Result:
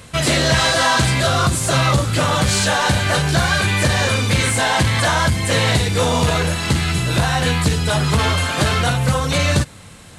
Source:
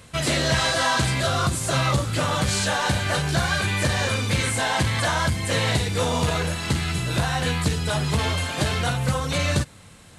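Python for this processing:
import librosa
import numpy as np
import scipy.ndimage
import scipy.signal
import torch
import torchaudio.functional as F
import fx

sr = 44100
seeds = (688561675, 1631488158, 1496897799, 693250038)

p1 = fx.peak_eq(x, sr, hz=1300.0, db=5.5, octaves=0.43, at=(8.0, 8.82))
p2 = 10.0 ** (-19.0 / 20.0) * np.tanh(p1 / 10.0 ** (-19.0 / 20.0))
p3 = p1 + F.gain(torch.from_numpy(p2), -3.5).numpy()
y = F.gain(torch.from_numpy(p3), 2.5).numpy()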